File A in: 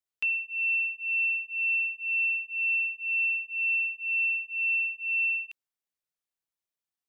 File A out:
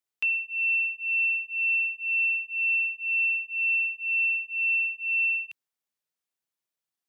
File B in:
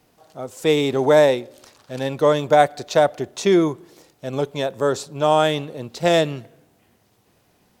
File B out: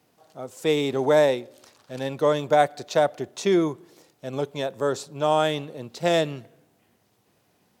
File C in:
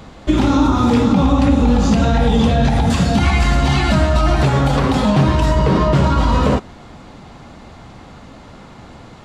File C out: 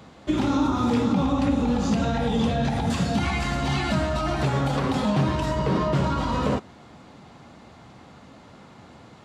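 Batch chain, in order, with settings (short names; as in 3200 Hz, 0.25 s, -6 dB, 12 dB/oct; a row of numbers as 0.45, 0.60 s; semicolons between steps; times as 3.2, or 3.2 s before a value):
HPF 91 Hz 12 dB/oct; match loudness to -24 LUFS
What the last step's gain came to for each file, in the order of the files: +2.0, -4.5, -8.0 dB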